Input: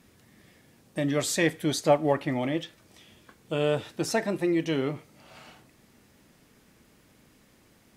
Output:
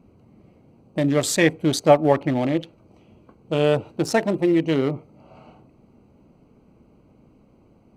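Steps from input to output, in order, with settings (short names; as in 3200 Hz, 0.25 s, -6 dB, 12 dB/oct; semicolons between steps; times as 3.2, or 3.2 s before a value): Wiener smoothing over 25 samples; gain +7 dB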